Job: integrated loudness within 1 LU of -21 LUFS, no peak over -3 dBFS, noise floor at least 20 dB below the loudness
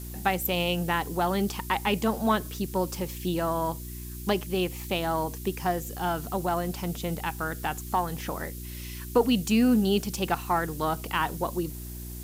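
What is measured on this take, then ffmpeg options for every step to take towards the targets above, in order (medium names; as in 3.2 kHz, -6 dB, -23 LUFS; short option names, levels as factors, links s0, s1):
hum 60 Hz; highest harmonic 360 Hz; hum level -36 dBFS; noise floor -38 dBFS; noise floor target -49 dBFS; loudness -28.5 LUFS; peak level -9.5 dBFS; loudness target -21.0 LUFS
-> -af "bandreject=f=60:t=h:w=4,bandreject=f=120:t=h:w=4,bandreject=f=180:t=h:w=4,bandreject=f=240:t=h:w=4,bandreject=f=300:t=h:w=4,bandreject=f=360:t=h:w=4"
-af "afftdn=nr=11:nf=-38"
-af "volume=2.37,alimiter=limit=0.708:level=0:latency=1"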